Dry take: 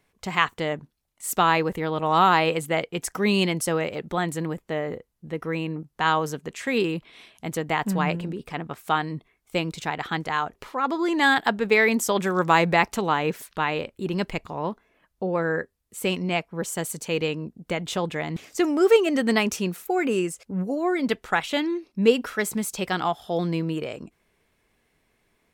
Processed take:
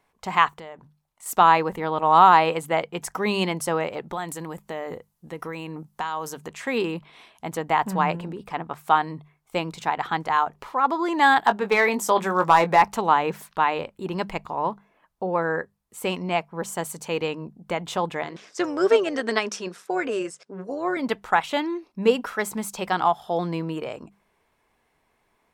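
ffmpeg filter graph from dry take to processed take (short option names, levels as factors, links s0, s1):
-filter_complex "[0:a]asettb=1/sr,asplit=3[s0][s1][s2];[s0]atrim=end=0.524[s3];[s1]atrim=start=0.52:end=1.26,asetpts=PTS-STARTPTS,afade=t=in:d=0.004:c=qsin,afade=t=out:st=0.736:d=0.004:c=qsin,bandreject=f=290:w=7.7,acompressor=threshold=0.0141:ratio=6:attack=3.2:release=140:knee=1:detection=peak[s4];[s2]atrim=start=1.256[s5];[s3][s4]acrossfade=d=0.004:c1=hsin:c2=qsin[s6];[s6][s5]acrossfade=d=0.004:c1=qsin:c2=hsin,asettb=1/sr,asplit=3[s7][s8][s9];[s7]atrim=end=4.134[s10];[s8]atrim=start=4.13:end=6.49,asetpts=PTS-STARTPTS,afade=t=in:d=0.004:c=qsin,afade=t=out:st=2.356:d=0.004:c=qsin,highshelf=f=4200:g=12,acompressor=threshold=0.0447:ratio=10:attack=3.2:release=140:knee=1:detection=peak[s11];[s9]atrim=start=6.486[s12];[s10][s11]acrossfade=d=0.004:c1=hsin:c2=qsin[s13];[s13][s12]acrossfade=d=0.004:c1=qsin:c2=hsin,asettb=1/sr,asplit=3[s14][s15][s16];[s14]atrim=end=11.454[s17];[s15]atrim=start=11.45:end=12.82,asetpts=PTS-STARTPTS,afade=t=in:d=0.004:c=qsin,afade=t=out:st=1.366:d=0.004:c=qsin,highpass=f=100:w=0.5412,highpass=f=100:w=1.3066,asoftclip=type=hard:threshold=0.282,asplit=2[s18][s19];[s19]adelay=20,volume=0.316[s20];[s18][s20]amix=inputs=2:normalize=0,atrim=end_sample=60417[s21];[s16]atrim=start=12.816[s22];[s17][s21]acrossfade=d=0.004:c1=hsin:c2=qsin[s23];[s23][s22]acrossfade=d=0.004:c1=qsin:c2=hsin,asettb=1/sr,asplit=3[s24][s25][s26];[s24]atrim=end=18.234[s27];[s25]atrim=start=18.23:end=20.97,asetpts=PTS-STARTPTS,afade=t=in:d=0.004:c=qsin,afade=t=out:st=2.736:d=0.004:c=qsin,tremolo=f=200:d=0.519,highpass=250,equalizer=f=410:t=q:w=4:g=4,equalizer=f=830:t=q:w=4:g=-7,equalizer=f=1600:t=q:w=4:g=6,equalizer=f=3600:t=q:w=4:g=4,equalizer=f=5300:t=q:w=4:g=8,lowpass=f=9300:w=0.5412,lowpass=f=9300:w=1.3066[s28];[s26]atrim=start=20.966[s29];[s27][s28]acrossfade=d=0.004:c1=hsin:c2=qsin[s30];[s30][s29]acrossfade=d=0.004:c1=qsin:c2=hsin,equalizer=f=920:t=o:w=1.1:g=10,bandreject=f=50:t=h:w=6,bandreject=f=100:t=h:w=6,bandreject=f=150:t=h:w=6,bandreject=f=200:t=h:w=6,volume=0.708"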